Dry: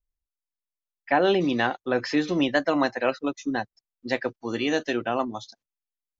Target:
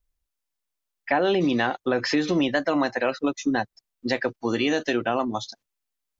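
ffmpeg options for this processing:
ffmpeg -i in.wav -filter_complex "[0:a]asplit=2[link_01][link_02];[link_02]alimiter=limit=-19dB:level=0:latency=1,volume=3dB[link_03];[link_01][link_03]amix=inputs=2:normalize=0,acompressor=threshold=-22dB:ratio=2" out.wav

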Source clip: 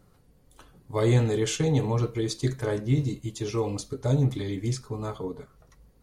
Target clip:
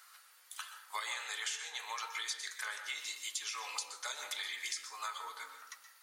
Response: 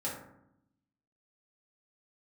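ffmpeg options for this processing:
-filter_complex "[0:a]highpass=frequency=1300:width=0.5412,highpass=frequency=1300:width=1.3066,acompressor=threshold=-50dB:ratio=12,asplit=2[link_01][link_02];[1:a]atrim=start_sample=2205,adelay=121[link_03];[link_02][link_03]afir=irnorm=-1:irlink=0,volume=-10dB[link_04];[link_01][link_04]amix=inputs=2:normalize=0,volume=13dB"

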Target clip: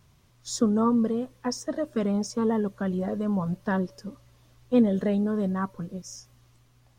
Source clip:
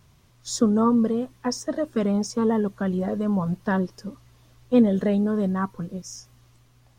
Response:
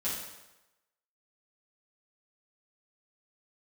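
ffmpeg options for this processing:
-filter_complex "[0:a]asplit=2[link_01][link_02];[link_02]asuperpass=centerf=560:order=4:qfactor=7.3[link_03];[1:a]atrim=start_sample=2205[link_04];[link_03][link_04]afir=irnorm=-1:irlink=0,volume=-22dB[link_05];[link_01][link_05]amix=inputs=2:normalize=0,volume=-3dB"

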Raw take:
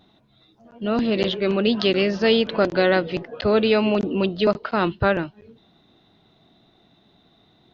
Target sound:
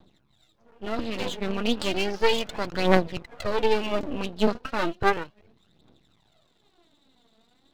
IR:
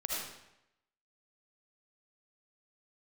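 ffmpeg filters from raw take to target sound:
-af "aphaser=in_gain=1:out_gain=1:delay=4.6:decay=0.71:speed=0.34:type=triangular,aeval=exprs='max(val(0),0)':channel_layout=same,volume=-5dB"

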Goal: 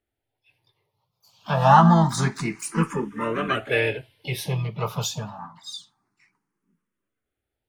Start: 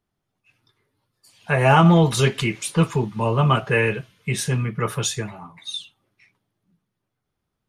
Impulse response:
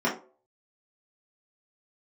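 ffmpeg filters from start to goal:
-filter_complex "[0:a]equalizer=frequency=920:width=2.1:gain=7,asplit=3[link_01][link_02][link_03];[link_02]asetrate=58866,aresample=44100,atempo=0.749154,volume=-9dB[link_04];[link_03]asetrate=88200,aresample=44100,atempo=0.5,volume=-17dB[link_05];[link_01][link_04][link_05]amix=inputs=3:normalize=0,asplit=2[link_06][link_07];[link_07]afreqshift=0.27[link_08];[link_06][link_08]amix=inputs=2:normalize=1,volume=-2.5dB"

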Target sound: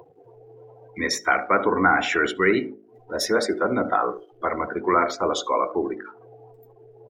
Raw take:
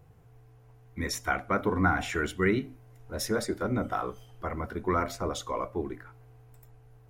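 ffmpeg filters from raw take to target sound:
ffmpeg -i in.wav -filter_complex "[0:a]asplit=2[link_01][link_02];[link_02]alimiter=limit=-21.5dB:level=0:latency=1,volume=-2.5dB[link_03];[link_01][link_03]amix=inputs=2:normalize=0,acompressor=mode=upward:threshold=-34dB:ratio=2.5,asplit=2[link_04][link_05];[link_05]adelay=75,lowpass=frequency=4700:poles=1,volume=-14.5dB,asplit=2[link_06][link_07];[link_07]adelay=75,lowpass=frequency=4700:poles=1,volume=0.18[link_08];[link_06][link_08]amix=inputs=2:normalize=0[link_09];[link_04][link_09]amix=inputs=2:normalize=0,acrusher=bits=6:mix=0:aa=0.5,acrossover=split=250 5900:gain=0.112 1 0.224[link_10][link_11][link_12];[link_10][link_11][link_12]amix=inputs=3:normalize=0,acontrast=46,highshelf=frequency=11000:gain=12,afftdn=noise_reduction=31:noise_floor=-35,bandreject=frequency=52.77:width_type=h:width=4,bandreject=frequency=105.54:width_type=h:width=4,bandreject=frequency=158.31:width_type=h:width=4,bandreject=frequency=211.08:width_type=h:width=4,bandreject=frequency=263.85:width_type=h:width=4,bandreject=frequency=316.62:width_type=h:width=4,bandreject=frequency=369.39:width_type=h:width=4,bandreject=frequency=422.16:width_type=h:width=4,bandreject=frequency=474.93:width_type=h:width=4,bandreject=frequency=527.7:width_type=h:width=4,bandreject=frequency=580.47:width_type=h:width=4,bandreject=frequency=633.24:width_type=h:width=4,bandreject=frequency=686.01:width_type=h:width=4,bandreject=frequency=738.78:width_type=h:width=4" out.wav

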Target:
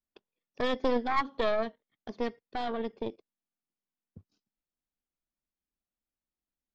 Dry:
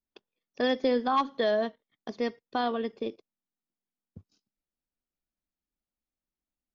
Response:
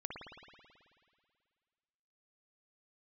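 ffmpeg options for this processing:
-af "aemphasis=mode=reproduction:type=50kf,aeval=exprs='0.168*(cos(1*acos(clip(val(0)/0.168,-1,1)))-cos(1*PI/2))+0.0841*(cos(2*acos(clip(val(0)/0.168,-1,1)))-cos(2*PI/2))+0.00531*(cos(6*acos(clip(val(0)/0.168,-1,1)))-cos(6*PI/2))':channel_layout=same,volume=-2.5dB"

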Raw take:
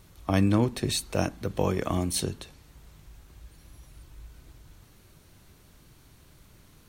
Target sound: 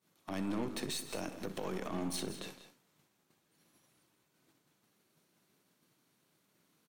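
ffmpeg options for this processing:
ffmpeg -i in.wav -filter_complex "[0:a]highpass=frequency=170:width=0.5412,highpass=frequency=170:width=1.3066,agate=range=-33dB:threshold=-46dB:ratio=3:detection=peak,asplit=3[link_01][link_02][link_03];[link_01]afade=type=out:start_time=1.87:duration=0.02[link_04];[link_02]highshelf=frequency=4500:gain=-10.5,afade=type=in:start_time=1.87:duration=0.02,afade=type=out:start_time=2.43:duration=0.02[link_05];[link_03]afade=type=in:start_time=2.43:duration=0.02[link_06];[link_04][link_05][link_06]amix=inputs=3:normalize=0,acompressor=threshold=-39dB:ratio=6,alimiter=level_in=11.5dB:limit=-24dB:level=0:latency=1:release=37,volume=-11.5dB,aeval=exprs='0.0178*(cos(1*acos(clip(val(0)/0.0178,-1,1)))-cos(1*PI/2))+0.002*(cos(6*acos(clip(val(0)/0.0178,-1,1)))-cos(6*PI/2))':channel_layout=same,asplit=2[link_07][link_08];[link_08]aecho=0:1:63|164|195:0.188|0.188|0.2[link_09];[link_07][link_09]amix=inputs=2:normalize=0,volume=6dB" out.wav

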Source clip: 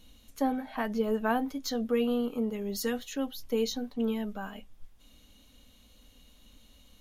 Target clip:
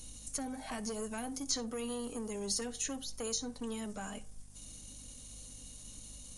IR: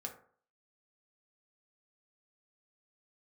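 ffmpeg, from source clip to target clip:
-filter_complex "[0:a]equalizer=frequency=3400:width=1:gain=-14.5,atempo=1.1,acrossover=split=270|3600[link_01][link_02][link_03];[link_01]acompressor=threshold=-47dB:ratio=4[link_04];[link_02]acompressor=threshold=-40dB:ratio=4[link_05];[link_03]acompressor=threshold=-58dB:ratio=4[link_06];[link_04][link_05][link_06]amix=inputs=3:normalize=0,acrossover=split=2200[link_07][link_08];[link_07]asoftclip=type=tanh:threshold=-39dB[link_09];[link_08]crystalizer=i=9:c=0[link_10];[link_09][link_10]amix=inputs=2:normalize=0,aeval=exprs='val(0)+0.000891*(sin(2*PI*50*n/s)+sin(2*PI*2*50*n/s)/2+sin(2*PI*3*50*n/s)/3+sin(2*PI*4*50*n/s)/4+sin(2*PI*5*50*n/s)/5)':channel_layout=same,asplit=2[link_11][link_12];[1:a]atrim=start_sample=2205,adelay=60[link_13];[link_12][link_13]afir=irnorm=-1:irlink=0,volume=-16dB[link_14];[link_11][link_14]amix=inputs=2:normalize=0,aresample=22050,aresample=44100,volume=3.5dB"

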